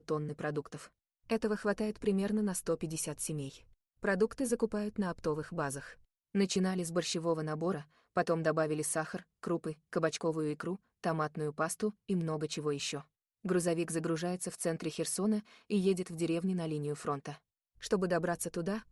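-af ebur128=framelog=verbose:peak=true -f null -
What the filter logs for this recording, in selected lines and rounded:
Integrated loudness:
  I:         -34.8 LUFS
  Threshold: -45.0 LUFS
Loudness range:
  LRA:         1.8 LU
  Threshold: -55.0 LUFS
  LRA low:   -35.8 LUFS
  LRA high:  -34.0 LUFS
True peak:
  Peak:      -17.8 dBFS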